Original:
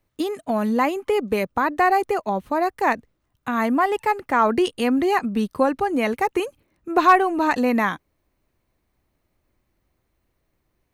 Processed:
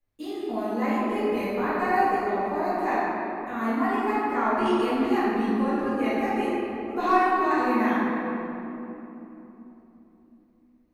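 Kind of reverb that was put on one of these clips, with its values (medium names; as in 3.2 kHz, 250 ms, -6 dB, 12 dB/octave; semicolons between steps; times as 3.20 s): simulated room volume 180 m³, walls hard, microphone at 2.3 m; trim -19 dB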